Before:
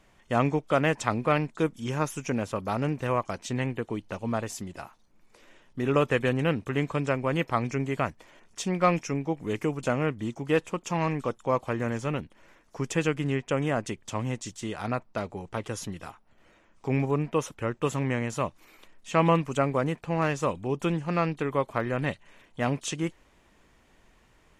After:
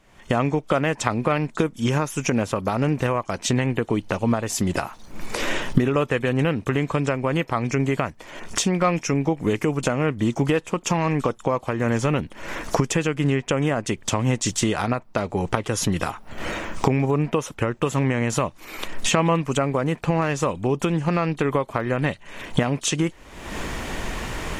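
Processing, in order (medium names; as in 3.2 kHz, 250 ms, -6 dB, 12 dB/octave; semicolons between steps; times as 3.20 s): recorder AGC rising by 52 dB/s; trim +1.5 dB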